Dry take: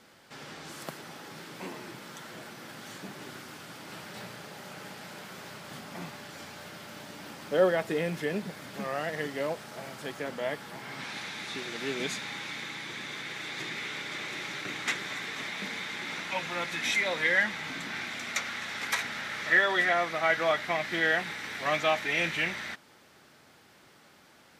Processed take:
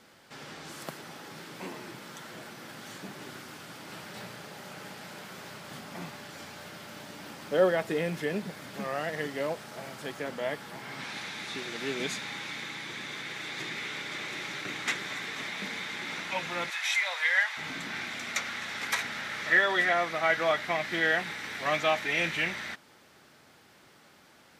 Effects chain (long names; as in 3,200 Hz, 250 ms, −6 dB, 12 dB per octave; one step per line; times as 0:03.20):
0:16.70–0:17.57: high-pass filter 730 Hz 24 dB per octave